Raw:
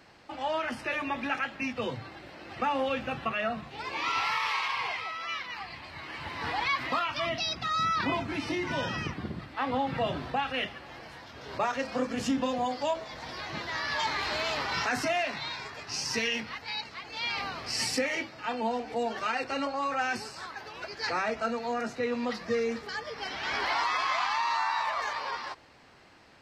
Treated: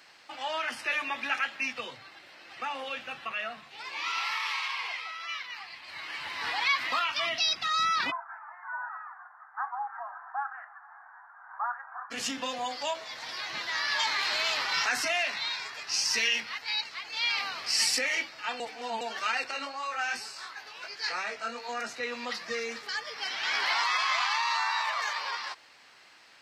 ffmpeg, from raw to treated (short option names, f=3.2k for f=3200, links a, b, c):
-filter_complex "[0:a]asplit=3[a][b][c];[a]afade=t=out:st=1.8:d=0.02[d];[b]flanger=delay=4.5:depth=5.4:regen=-83:speed=1.9:shape=sinusoidal,afade=t=in:st=1.8:d=0.02,afade=t=out:st=5.87:d=0.02[e];[c]afade=t=in:st=5.87:d=0.02[f];[d][e][f]amix=inputs=3:normalize=0,asplit=3[g][h][i];[g]afade=t=out:st=8.1:d=0.02[j];[h]asuperpass=centerf=1100:order=12:qfactor=1.2,afade=t=in:st=8.1:d=0.02,afade=t=out:st=12.1:d=0.02[k];[i]afade=t=in:st=12.1:d=0.02[l];[j][k][l]amix=inputs=3:normalize=0,asettb=1/sr,asplit=3[m][n][o];[m]atrim=end=19.514[p];[n]atrim=start=19.51:end=21.69,asetpts=PTS-STARTPTS,afade=t=in:d=0.004:c=qsin,afade=t=out:st=2.176:d=0.004:c=qsin,flanger=delay=19.5:depth=2.8:speed=2.8[q];[o]atrim=start=21.686[r];[p][q]acrossfade=d=0.004:c1=hsin:c2=qsin[s];[s][r]acrossfade=d=0.004:c1=qsin:c2=hsin,asplit=3[t][u][v];[t]atrim=end=18.602[w];[u]atrim=start=18.598:end=19.012,asetpts=PTS-STARTPTS,areverse[x];[v]atrim=start=19.008[y];[w][x]acrossfade=d=0.004:c1=hsin:c2=hsin[z];[z][y]acrossfade=d=0.004:c1=hsin:c2=hsin,highpass=f=180:p=1,tiltshelf=f=850:g=-8.5,volume=-2.5dB"